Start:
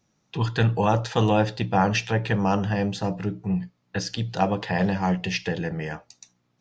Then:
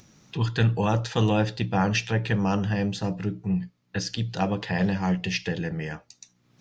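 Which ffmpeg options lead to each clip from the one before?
-af "equalizer=f=770:w=0.88:g=-5.5,acompressor=mode=upward:threshold=-42dB:ratio=2.5"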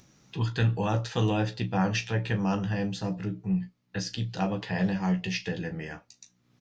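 -af "aecho=1:1:16|37:0.398|0.188,volume=-4.5dB"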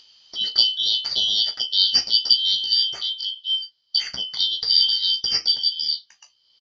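-filter_complex "[0:a]afftfilt=real='real(if(lt(b,272),68*(eq(floor(b/68),0)*2+eq(floor(b/68),1)*3+eq(floor(b/68),2)*0+eq(floor(b/68),3)*1)+mod(b,68),b),0)':imag='imag(if(lt(b,272),68*(eq(floor(b/68),0)*2+eq(floor(b/68),1)*3+eq(floor(b/68),2)*0+eq(floor(b/68),3)*1)+mod(b,68),b),0)':win_size=2048:overlap=0.75,lowpass=f=4.7k:t=q:w=15,asplit=2[a][b];[b]adelay=15,volume=-11dB[c];[a][c]amix=inputs=2:normalize=0,volume=-1.5dB"

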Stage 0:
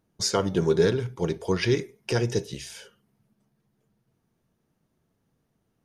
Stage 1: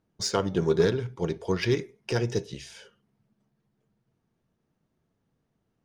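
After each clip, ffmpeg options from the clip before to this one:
-af "aeval=exprs='0.355*(cos(1*acos(clip(val(0)/0.355,-1,1)))-cos(1*PI/2))+0.0282*(cos(3*acos(clip(val(0)/0.355,-1,1)))-cos(3*PI/2))':c=same,adynamicsmooth=sensitivity=4:basefreq=7.6k"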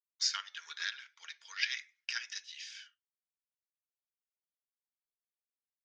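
-af "agate=range=-33dB:threshold=-51dB:ratio=3:detection=peak,asuperpass=centerf=3200:order=8:qfactor=0.67"

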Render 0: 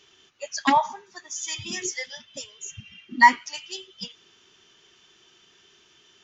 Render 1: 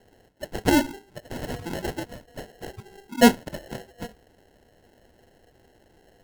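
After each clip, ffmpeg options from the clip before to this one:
-af "acrusher=samples=37:mix=1:aa=0.000001"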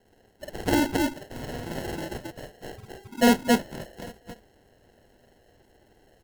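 -af "aecho=1:1:49.56|271.1:1|1,volume=-6dB"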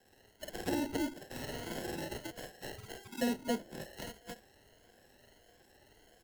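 -filter_complex "[0:a]afftfilt=real='re*pow(10,7/40*sin(2*PI*(1.8*log(max(b,1)*sr/1024/100)/log(2)-(1.6)*(pts-256)/sr)))':imag='im*pow(10,7/40*sin(2*PI*(1.8*log(max(b,1)*sr/1024/100)/log(2)-(1.6)*(pts-256)/sr)))':win_size=1024:overlap=0.75,acrossover=split=210|600[a][b][c];[a]acompressor=threshold=-40dB:ratio=4[d];[b]acompressor=threshold=-26dB:ratio=4[e];[c]acompressor=threshold=-42dB:ratio=4[f];[d][e][f]amix=inputs=3:normalize=0,tiltshelf=f=1.2k:g=-4.5,volume=-2.5dB"

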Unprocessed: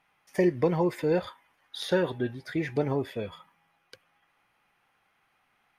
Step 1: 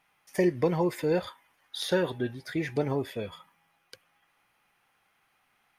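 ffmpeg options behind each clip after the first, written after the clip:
-af "highshelf=f=4.8k:g=7.5,volume=-1dB"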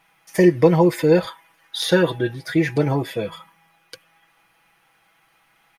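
-af "aecho=1:1:6.1:0.65,volume=8dB"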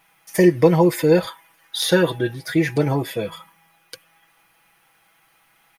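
-af "highshelf=f=8.6k:g=9.5"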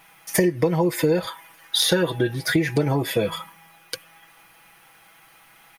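-af "acompressor=threshold=-24dB:ratio=8,volume=7dB"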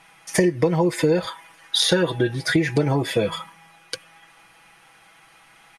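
-af "lowpass=f=9.8k:w=0.5412,lowpass=f=9.8k:w=1.3066,volume=1dB"

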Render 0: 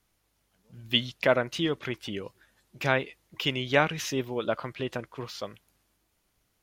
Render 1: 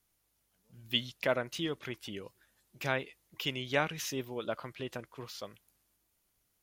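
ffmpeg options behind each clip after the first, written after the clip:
-af "highshelf=f=7.2k:g=10.5,volume=-7.5dB"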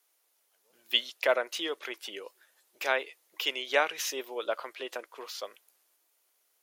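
-af "highpass=f=410:w=0.5412,highpass=f=410:w=1.3066,volume=5dB"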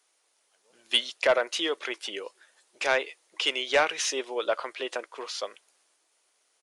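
-af "asoftclip=type=tanh:threshold=-18.5dB,aresample=22050,aresample=44100,volume=5.5dB"

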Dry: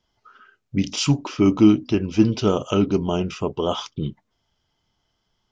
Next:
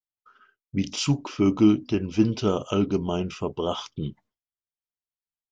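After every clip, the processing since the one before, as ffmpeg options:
-af "agate=range=-33dB:threshold=-46dB:ratio=3:detection=peak,volume=-4dB"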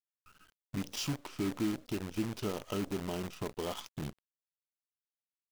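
-af "acompressor=threshold=-39dB:ratio=2,acrusher=bits=7:dc=4:mix=0:aa=0.000001,volume=-2dB"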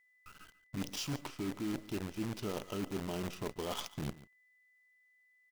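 -af "areverse,acompressor=threshold=-41dB:ratio=6,areverse,aeval=exprs='val(0)+0.0002*sin(2*PI*2000*n/s)':c=same,aecho=1:1:142:0.126,volume=6dB"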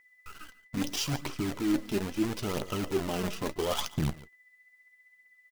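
-filter_complex "[0:a]aphaser=in_gain=1:out_gain=1:delay=5:decay=0.47:speed=0.76:type=triangular,asplit=2[a][b];[b]adelay=13,volume=-13dB[c];[a][c]amix=inputs=2:normalize=0,volume=6.5dB"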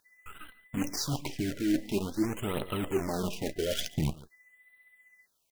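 -af "acrusher=bits=11:mix=0:aa=0.000001,afftfilt=real='re*(1-between(b*sr/1024,950*pow(6000/950,0.5+0.5*sin(2*PI*0.47*pts/sr))/1.41,950*pow(6000/950,0.5+0.5*sin(2*PI*0.47*pts/sr))*1.41))':imag='im*(1-between(b*sr/1024,950*pow(6000/950,0.5+0.5*sin(2*PI*0.47*pts/sr))/1.41,950*pow(6000/950,0.5+0.5*sin(2*PI*0.47*pts/sr))*1.41))':win_size=1024:overlap=0.75"

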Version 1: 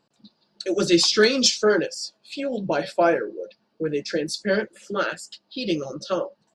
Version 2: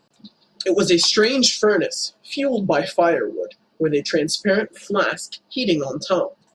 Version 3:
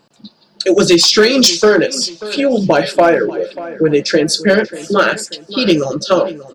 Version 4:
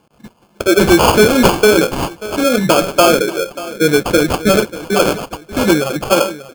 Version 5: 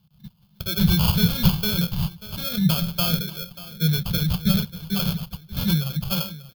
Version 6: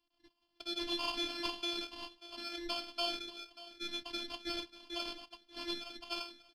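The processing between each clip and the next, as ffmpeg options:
-af "acompressor=threshold=-20dB:ratio=4,volume=7dB"
-filter_complex "[0:a]asoftclip=type=hard:threshold=-9.5dB,asplit=2[a][b];[b]adelay=587,lowpass=f=3.1k:p=1,volume=-16dB,asplit=2[c][d];[d]adelay=587,lowpass=f=3.1k:p=1,volume=0.41,asplit=2[e][f];[f]adelay=587,lowpass=f=3.1k:p=1,volume=0.41,asplit=2[g][h];[h]adelay=587,lowpass=f=3.1k:p=1,volume=0.41[i];[a][c][e][g][i]amix=inputs=5:normalize=0,volume=7dB"
-af "acrusher=samples=23:mix=1:aa=0.000001"
-af "firequalizer=gain_entry='entry(110,0);entry(170,6);entry(270,-28);entry(910,-19);entry(2400,-16);entry(3600,-1);entry(7600,-19);entry(13000,1)':delay=0.05:min_phase=1,volume=-1dB"
-af "highpass=f=220:w=0.5412,highpass=f=220:w=1.3066,equalizer=f=460:t=q:w=4:g=-6,equalizer=f=1.4k:t=q:w=4:g=-7,equalizer=f=3.8k:t=q:w=4:g=-6,equalizer=f=6.6k:t=q:w=4:g=-10,lowpass=f=7k:w=0.5412,lowpass=f=7k:w=1.3066,afftfilt=real='hypot(re,im)*cos(PI*b)':imag='0':win_size=512:overlap=0.75,volume=-3dB"

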